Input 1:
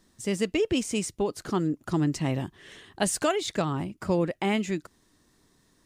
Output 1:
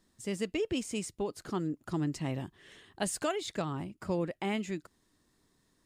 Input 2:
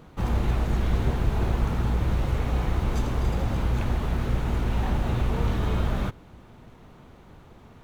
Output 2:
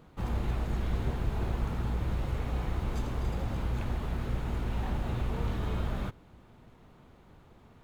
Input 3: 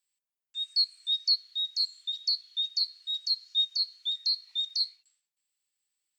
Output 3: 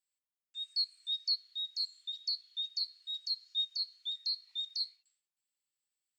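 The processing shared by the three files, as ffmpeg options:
-af "bandreject=f=5900:w=19,volume=0.447"

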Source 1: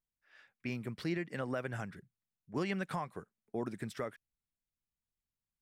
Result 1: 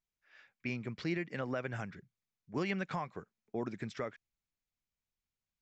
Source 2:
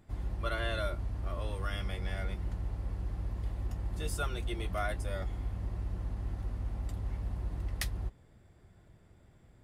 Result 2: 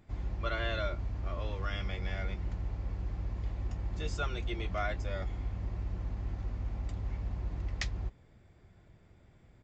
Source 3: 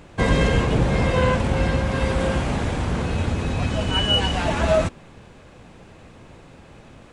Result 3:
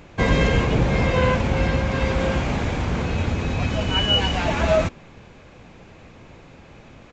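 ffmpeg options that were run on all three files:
-af "equalizer=f=2300:w=5.2:g=4.5,aresample=16000,aresample=44100"

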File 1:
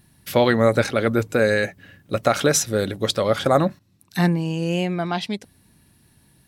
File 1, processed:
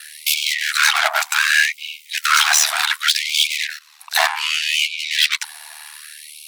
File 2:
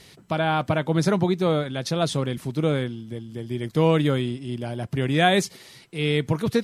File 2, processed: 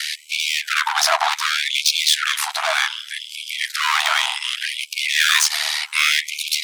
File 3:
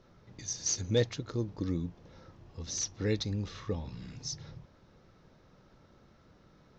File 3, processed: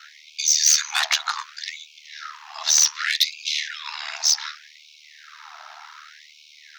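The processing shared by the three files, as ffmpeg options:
-filter_complex "[0:a]asplit=2[s0][s1];[s1]highpass=f=720:p=1,volume=70.8,asoftclip=type=tanh:threshold=0.794[s2];[s0][s2]amix=inputs=2:normalize=0,lowpass=f=6000:p=1,volume=0.501,aeval=exprs='val(0)*sin(2*PI*38*n/s)':c=same,afftfilt=real='re*gte(b*sr/1024,620*pow(2200/620,0.5+0.5*sin(2*PI*0.66*pts/sr)))':imag='im*gte(b*sr/1024,620*pow(2200/620,0.5+0.5*sin(2*PI*0.66*pts/sr)))':win_size=1024:overlap=0.75"

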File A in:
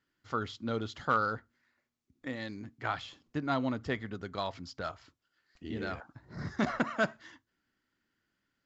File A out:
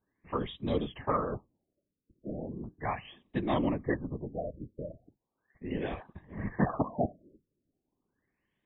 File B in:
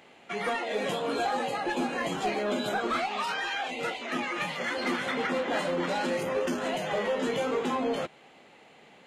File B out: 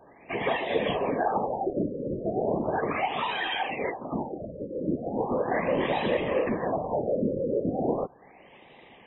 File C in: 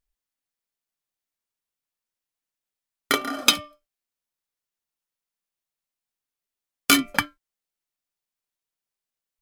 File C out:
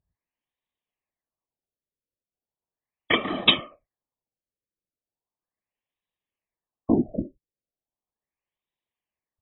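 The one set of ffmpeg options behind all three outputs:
-af "asuperstop=centerf=1400:order=4:qfactor=3.2,afftfilt=real='hypot(re,im)*cos(2*PI*random(0))':imag='hypot(re,im)*sin(2*PI*random(1))':win_size=512:overlap=0.75,afftfilt=real='re*lt(b*sr/1024,590*pow(4000/590,0.5+0.5*sin(2*PI*0.37*pts/sr)))':imag='im*lt(b*sr/1024,590*pow(4000/590,0.5+0.5*sin(2*PI*0.37*pts/sr)))':win_size=1024:overlap=0.75,volume=2.82"

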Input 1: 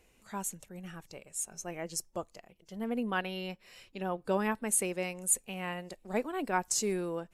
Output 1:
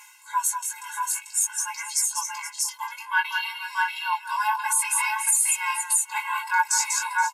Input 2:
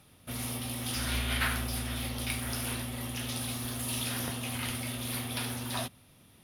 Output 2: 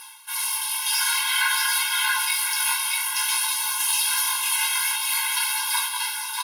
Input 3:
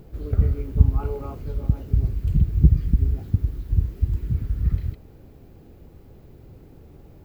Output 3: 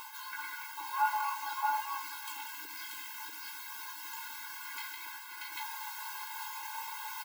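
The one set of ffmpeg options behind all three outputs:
-af "afftfilt=real='re*(1-between(b*sr/4096,220,700))':imag='im*(1-between(b*sr/4096,220,700))':win_size=4096:overlap=0.75,equalizer=f=1100:w=0.36:g=14,aecho=1:1:6.8:0.5,aecho=1:1:192|474|634|670:0.376|0.133|0.631|0.282,flanger=delay=15:depth=6.4:speed=0.53,bass=f=250:g=-5,treble=f=4000:g=14,areverse,acompressor=mode=upward:threshold=0.0447:ratio=2.5,areverse,alimiter=level_in=3.98:limit=0.891:release=50:level=0:latency=1,afftfilt=real='re*eq(mod(floor(b*sr/1024/280),2),1)':imag='im*eq(mod(floor(b*sr/1024/280),2),1)':win_size=1024:overlap=0.75,volume=0.398"

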